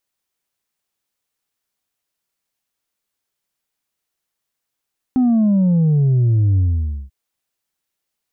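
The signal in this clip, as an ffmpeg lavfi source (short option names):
-f lavfi -i "aevalsrc='0.251*clip((1.94-t)/0.52,0,1)*tanh(1.33*sin(2*PI*260*1.94/log(65/260)*(exp(log(65/260)*t/1.94)-1)))/tanh(1.33)':d=1.94:s=44100"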